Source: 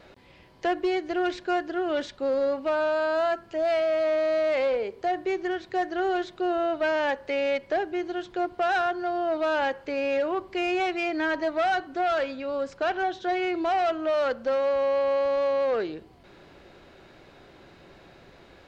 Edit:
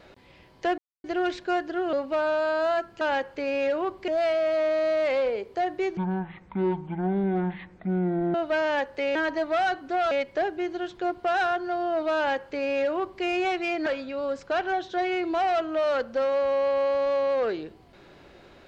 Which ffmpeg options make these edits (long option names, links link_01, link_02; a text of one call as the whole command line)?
ffmpeg -i in.wav -filter_complex "[0:a]asplit=11[link_01][link_02][link_03][link_04][link_05][link_06][link_07][link_08][link_09][link_10][link_11];[link_01]atrim=end=0.78,asetpts=PTS-STARTPTS,afade=type=out:start_time=0.776:duration=0.004:curve=hsin[link_12];[link_02]atrim=start=0.78:end=1.04,asetpts=PTS-STARTPTS,volume=0[link_13];[link_03]atrim=start=1.04:end=1.932,asetpts=PTS-STARTPTS,afade=type=in:duration=0.004:curve=hsin[link_14];[link_04]atrim=start=2.468:end=3.552[link_15];[link_05]atrim=start=9.508:end=10.582[link_16];[link_06]atrim=start=3.548:end=5.444[link_17];[link_07]atrim=start=5.44:end=6.65,asetpts=PTS-STARTPTS,asetrate=22491,aresample=44100,atrim=end_sample=104629,asetpts=PTS-STARTPTS[link_18];[link_08]atrim=start=6.646:end=7.462[link_19];[link_09]atrim=start=11.208:end=12.172[link_20];[link_10]atrim=start=7.458:end=11.212[link_21];[link_11]atrim=start=12.168[link_22];[link_12][link_13][link_14]concat=n=3:v=0:a=1[link_23];[link_23][link_15]acrossfade=duration=0.004:curve1=hsin:curve2=hsin[link_24];[link_24][link_16]acrossfade=duration=0.004:curve1=hsin:curve2=hsin[link_25];[link_25][link_17]acrossfade=duration=0.004:curve1=hsin:curve2=hsin[link_26];[link_26][link_18]acrossfade=duration=0.004:curve1=hsin:curve2=hsin[link_27];[link_27][link_19]acrossfade=duration=0.004:curve1=hsin:curve2=hsin[link_28];[link_28][link_20]acrossfade=duration=0.004:curve1=hsin:curve2=hsin[link_29];[link_29][link_21]acrossfade=duration=0.004:curve1=hsin:curve2=hsin[link_30];[link_30][link_22]acrossfade=duration=0.004:curve1=hsin:curve2=hsin" out.wav